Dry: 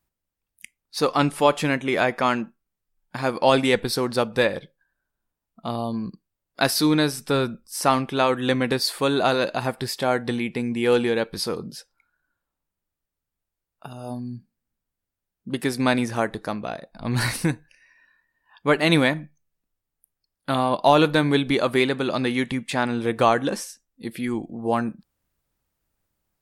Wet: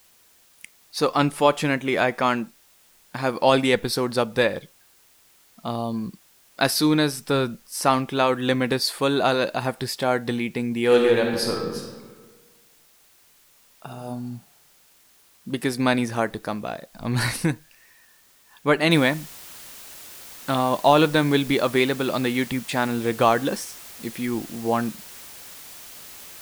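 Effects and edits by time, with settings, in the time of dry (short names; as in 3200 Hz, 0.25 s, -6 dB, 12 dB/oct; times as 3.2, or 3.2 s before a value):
10.84–13.87 reverb throw, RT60 1.5 s, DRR 0.5 dB
18.91 noise floor step -57 dB -42 dB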